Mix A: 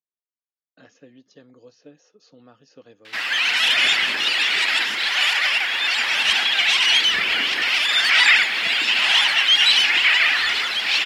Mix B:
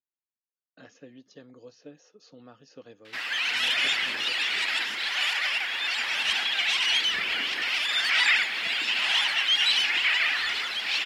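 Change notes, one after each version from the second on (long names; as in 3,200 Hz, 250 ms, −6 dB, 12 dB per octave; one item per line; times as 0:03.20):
background −7.5 dB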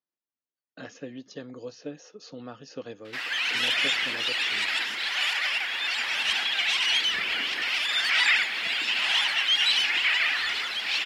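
speech +9.0 dB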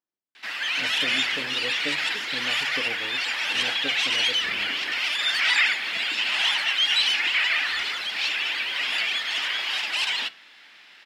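background: entry −2.70 s
reverb: on, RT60 0.35 s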